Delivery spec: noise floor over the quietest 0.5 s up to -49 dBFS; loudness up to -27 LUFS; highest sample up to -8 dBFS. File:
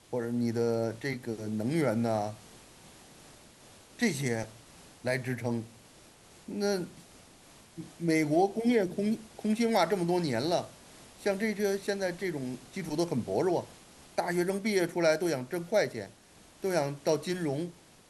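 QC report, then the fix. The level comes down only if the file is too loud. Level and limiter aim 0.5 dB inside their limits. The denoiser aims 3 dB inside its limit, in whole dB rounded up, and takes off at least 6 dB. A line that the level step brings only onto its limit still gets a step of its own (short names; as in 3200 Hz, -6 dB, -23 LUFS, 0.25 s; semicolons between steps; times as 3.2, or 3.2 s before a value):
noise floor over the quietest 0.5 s -57 dBFS: OK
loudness -31.0 LUFS: OK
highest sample -14.0 dBFS: OK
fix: none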